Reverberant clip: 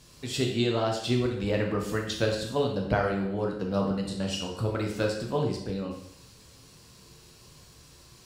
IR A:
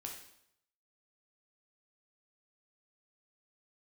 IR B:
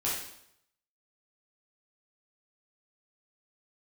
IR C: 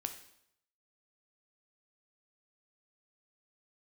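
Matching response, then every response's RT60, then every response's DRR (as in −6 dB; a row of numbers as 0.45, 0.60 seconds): A; 0.75, 0.75, 0.75 seconds; 0.0, −8.0, 6.0 decibels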